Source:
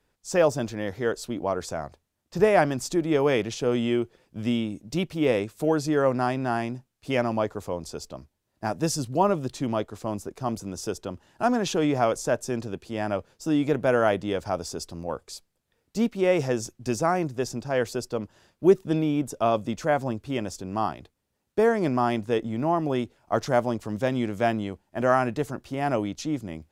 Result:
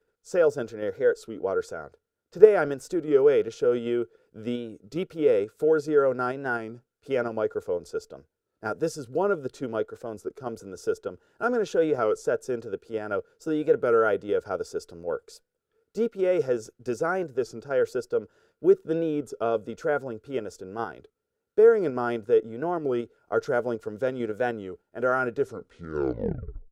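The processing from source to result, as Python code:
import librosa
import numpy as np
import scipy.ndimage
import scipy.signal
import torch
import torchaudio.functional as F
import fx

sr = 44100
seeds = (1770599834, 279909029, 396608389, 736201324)

p1 = fx.tape_stop_end(x, sr, length_s=1.41)
p2 = fx.small_body(p1, sr, hz=(450.0, 1400.0), ring_ms=35, db=18)
p3 = fx.level_steps(p2, sr, step_db=21)
p4 = p2 + (p3 * librosa.db_to_amplitude(-2.0))
p5 = fx.record_warp(p4, sr, rpm=33.33, depth_cents=100.0)
y = p5 * librosa.db_to_amplitude(-12.5)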